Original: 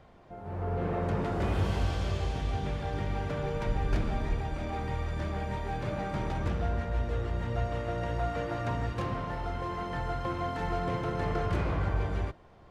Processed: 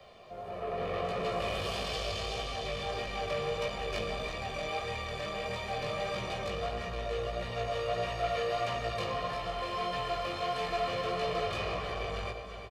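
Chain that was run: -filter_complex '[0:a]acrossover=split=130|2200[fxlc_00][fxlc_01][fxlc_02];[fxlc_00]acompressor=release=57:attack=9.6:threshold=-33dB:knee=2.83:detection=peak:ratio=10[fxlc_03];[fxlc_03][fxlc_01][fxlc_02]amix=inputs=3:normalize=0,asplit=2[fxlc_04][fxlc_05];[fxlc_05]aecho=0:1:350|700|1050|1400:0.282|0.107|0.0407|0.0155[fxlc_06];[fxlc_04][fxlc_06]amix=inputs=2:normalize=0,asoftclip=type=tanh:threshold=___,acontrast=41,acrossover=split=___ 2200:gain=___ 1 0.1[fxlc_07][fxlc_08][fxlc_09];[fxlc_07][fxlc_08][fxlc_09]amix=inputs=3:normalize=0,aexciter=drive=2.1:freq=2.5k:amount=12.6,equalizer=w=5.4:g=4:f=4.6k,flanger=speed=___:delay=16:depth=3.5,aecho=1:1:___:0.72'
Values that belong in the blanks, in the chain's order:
-31.5dB, 220, 0.224, 1.6, 1.7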